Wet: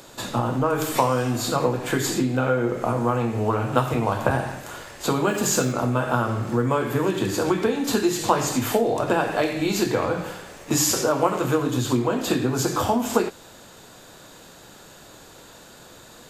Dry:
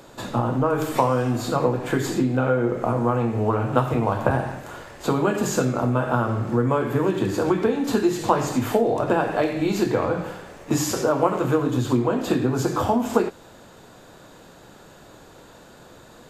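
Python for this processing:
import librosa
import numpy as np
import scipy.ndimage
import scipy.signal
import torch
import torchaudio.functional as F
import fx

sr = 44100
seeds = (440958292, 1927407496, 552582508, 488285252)

y = fx.high_shelf(x, sr, hz=2300.0, db=9.5)
y = fx.quant_dither(y, sr, seeds[0], bits=8, dither='none', at=(5.28, 5.72))
y = F.gain(torch.from_numpy(y), -1.5).numpy()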